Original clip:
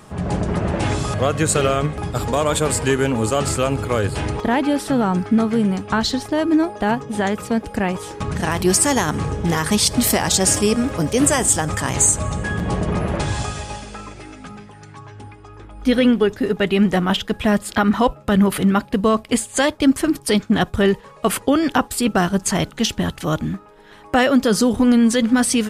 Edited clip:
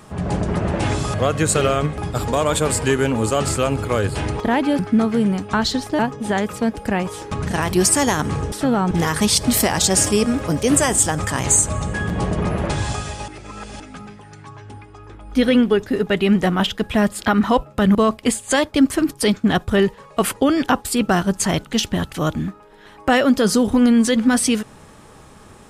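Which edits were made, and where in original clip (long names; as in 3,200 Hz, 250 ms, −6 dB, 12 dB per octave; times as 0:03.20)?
0:04.79–0:05.18: move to 0:09.41
0:06.38–0:06.88: remove
0:13.78–0:14.30: reverse
0:18.45–0:19.01: remove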